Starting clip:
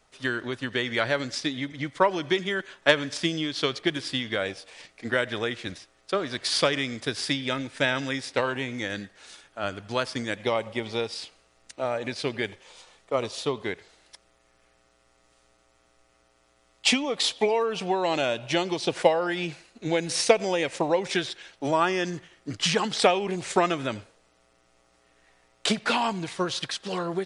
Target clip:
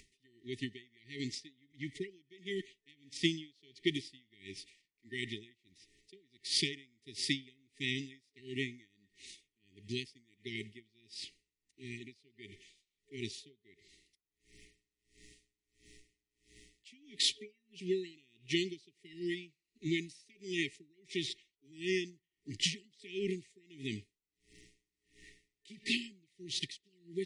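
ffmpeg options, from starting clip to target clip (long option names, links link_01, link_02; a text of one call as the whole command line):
ffmpeg -i in.wav -af "afftfilt=real='re*(1-between(b*sr/4096,420,1800))':imag='im*(1-between(b*sr/4096,420,1800))':win_size=4096:overlap=0.75,acompressor=mode=upward:threshold=-42dB:ratio=2.5,aeval=exprs='val(0)*pow(10,-34*(0.5-0.5*cos(2*PI*1.5*n/s))/20)':channel_layout=same,volume=-4dB" out.wav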